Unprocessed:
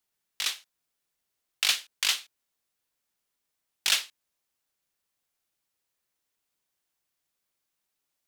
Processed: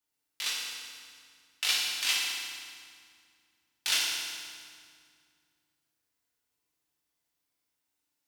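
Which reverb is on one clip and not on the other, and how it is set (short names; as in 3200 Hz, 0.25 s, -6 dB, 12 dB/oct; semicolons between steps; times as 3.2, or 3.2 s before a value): FDN reverb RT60 2.1 s, low-frequency decay 1.55×, high-frequency decay 0.85×, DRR -5.5 dB; gain -7 dB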